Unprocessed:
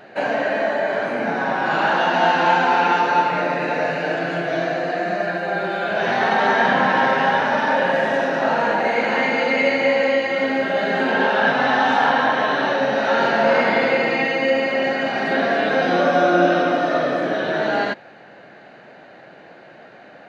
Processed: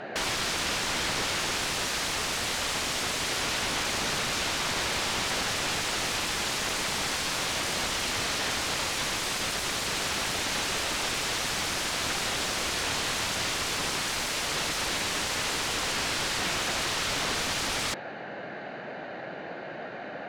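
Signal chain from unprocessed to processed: peak limiter -14.5 dBFS, peak gain reduction 10 dB; integer overflow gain 27.5 dB; distance through air 58 m; trim +5.5 dB

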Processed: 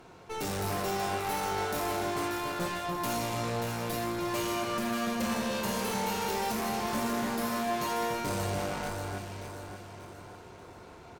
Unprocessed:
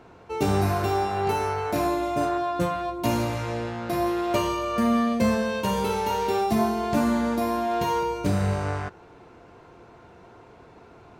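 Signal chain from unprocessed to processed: treble shelf 3.9 kHz +11.5 dB; valve stage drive 32 dB, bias 0.65; doubling 24 ms -13.5 dB; echo whose repeats swap between lows and highs 292 ms, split 2 kHz, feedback 67%, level -2.5 dB; on a send at -13 dB: reverberation RT60 0.60 s, pre-delay 5 ms

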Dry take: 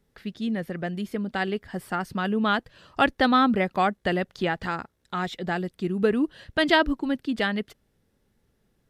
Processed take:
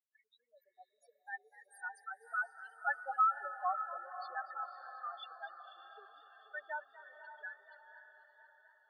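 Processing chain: Doppler pass-by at 3.46 s, 20 m/s, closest 27 m; peaking EQ 8 kHz +4 dB 0.32 oct; loudest bins only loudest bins 4; Bessel high-pass 1.2 kHz, order 8; treble shelf 6 kHz +9.5 dB; echo that smears into a reverb 547 ms, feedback 50%, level -11 dB; modulated delay 243 ms, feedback 76%, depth 87 cents, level -17 dB; trim -2.5 dB

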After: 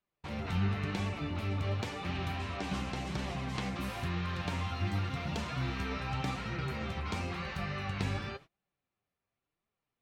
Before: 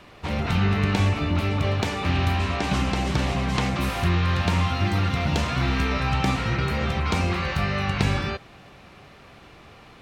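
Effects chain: flange 0.93 Hz, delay 4.4 ms, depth 7 ms, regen +44%; gate -42 dBFS, range -30 dB; trim -8 dB

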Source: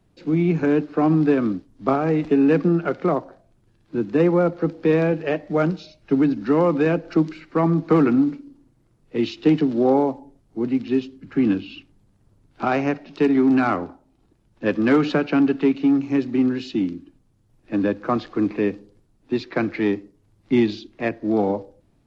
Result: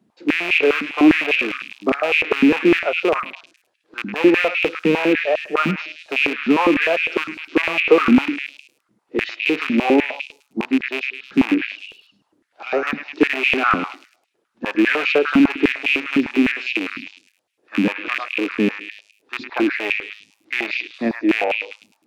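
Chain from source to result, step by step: rattle on loud lows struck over -24 dBFS, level -12 dBFS; repeats whose band climbs or falls 105 ms, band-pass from 1.7 kHz, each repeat 0.7 oct, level -2 dB; step-sequenced high-pass 9.9 Hz 220–2500 Hz; trim -2.5 dB

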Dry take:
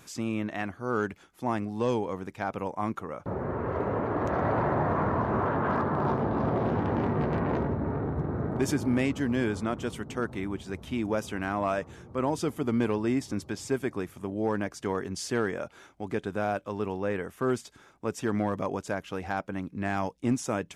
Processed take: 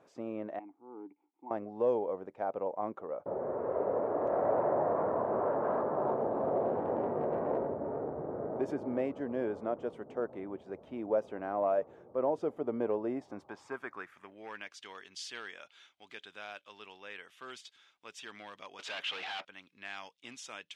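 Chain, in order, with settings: 0.59–1.51 s: vowel filter u; 18.79–19.45 s: overdrive pedal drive 33 dB, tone 1.2 kHz, clips at -17 dBFS; band-pass sweep 570 Hz -> 3.3 kHz, 13.10–14.77 s; trim +2.5 dB

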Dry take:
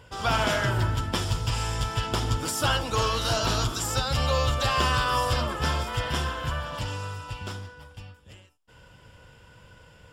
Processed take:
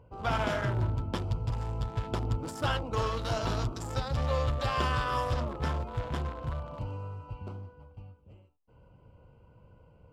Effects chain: local Wiener filter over 25 samples; treble shelf 3.8 kHz -8.5 dB, from 6.43 s -3 dB; short-mantissa float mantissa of 8-bit; trim -3.5 dB

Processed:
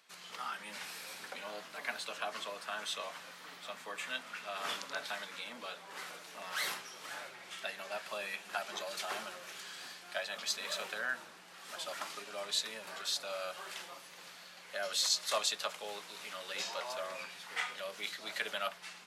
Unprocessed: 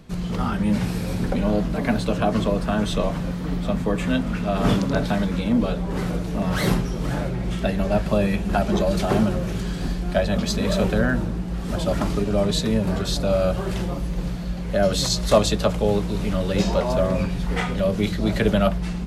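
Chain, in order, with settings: high-pass 1.3 kHz 12 dB/octave; trim -6.5 dB

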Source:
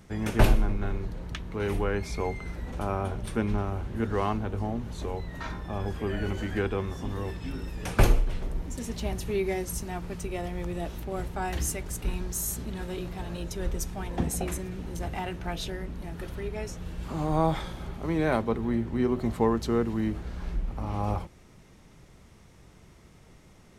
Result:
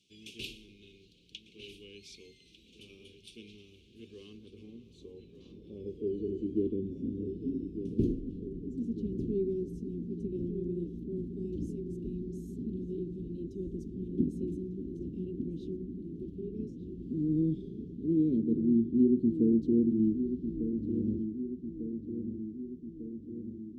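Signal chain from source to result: inverse Chebyshev band-stop 630–2000 Hz, stop band 40 dB; band-pass sweep 2.4 kHz -> 270 Hz, 3.69–6.84 s; on a send: filtered feedback delay 1198 ms, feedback 61%, low-pass 2.2 kHz, level -9 dB; on the sum: trim +5 dB

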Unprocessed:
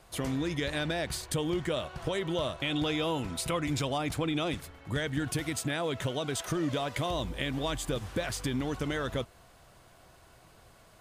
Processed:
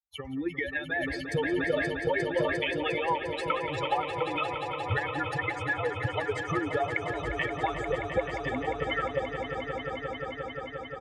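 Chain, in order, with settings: expander on every frequency bin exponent 3; high-pass 64 Hz; high-order bell 1.3 kHz +15.5 dB 2.6 oct; band-stop 1.5 kHz, Q 5.5; comb 2.3 ms, depth 79%; transient shaper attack +8 dB, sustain +2 dB; compression, threshold -31 dBFS, peak gain reduction 19.5 dB; tape spacing loss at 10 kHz 23 dB; echo with a slow build-up 176 ms, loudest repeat 5, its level -10 dB; 0.94–3.09 s: decay stretcher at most 31 dB/s; trim +5.5 dB

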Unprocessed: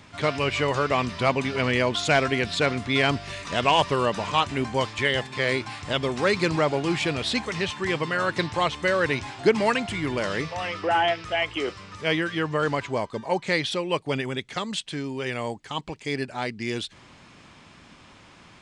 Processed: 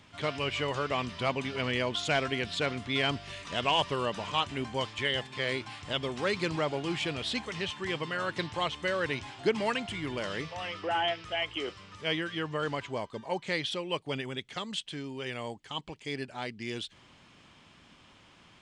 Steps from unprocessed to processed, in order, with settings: peaking EQ 3.1 kHz +6 dB 0.32 oct; trim -8 dB

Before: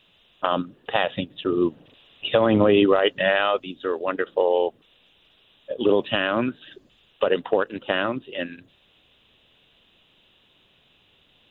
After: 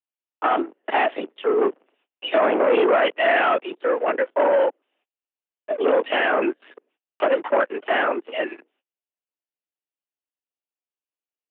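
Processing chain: LPC vocoder at 8 kHz whisper; waveshaping leveller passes 3; mistuned SSB +69 Hz 210–2600 Hz; gate -59 dBFS, range -28 dB; trim -5 dB

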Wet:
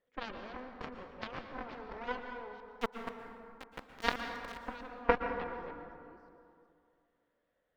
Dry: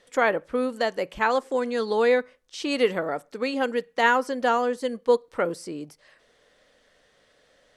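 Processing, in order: chunks repeated in reverse 370 ms, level -4 dB; distance through air 250 m; Chebyshev shaper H 2 -11 dB, 3 -9 dB, 4 -29 dB, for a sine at -5 dBFS; 2.60–4.67 s: small samples zeroed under -37 dBFS; treble shelf 3.5 kHz -10.5 dB; plate-style reverb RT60 2.4 s, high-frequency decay 0.45×, pre-delay 105 ms, DRR 5.5 dB; trim +4 dB

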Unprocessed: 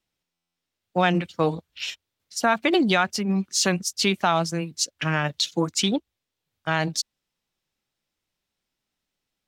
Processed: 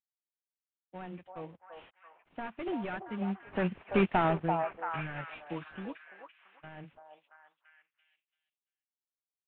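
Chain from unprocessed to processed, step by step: CVSD coder 16 kbps; Doppler pass-by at 4.05 s, 8 m/s, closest 2.2 m; repeats whose band climbs or falls 338 ms, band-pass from 750 Hz, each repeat 0.7 oct, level -2 dB

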